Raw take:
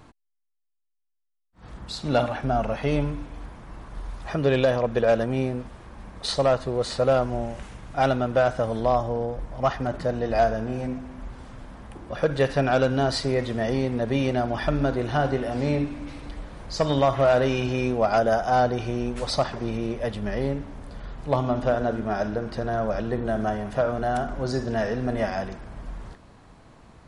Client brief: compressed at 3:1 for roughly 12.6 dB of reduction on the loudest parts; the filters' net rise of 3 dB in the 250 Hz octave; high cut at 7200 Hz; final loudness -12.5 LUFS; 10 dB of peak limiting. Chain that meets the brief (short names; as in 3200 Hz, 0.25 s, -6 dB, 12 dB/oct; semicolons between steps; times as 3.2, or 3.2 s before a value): LPF 7200 Hz; bell 250 Hz +3.5 dB; compressor 3:1, threshold -33 dBFS; gain +26 dB; limiter -3 dBFS